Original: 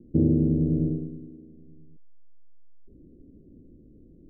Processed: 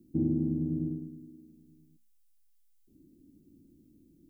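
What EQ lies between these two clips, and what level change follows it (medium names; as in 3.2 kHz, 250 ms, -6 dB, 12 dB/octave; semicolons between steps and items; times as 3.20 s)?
tilt EQ +4 dB/octave; high-order bell 530 Hz -15.5 dB 1 oct; hum notches 60/120/180/240 Hz; +2.0 dB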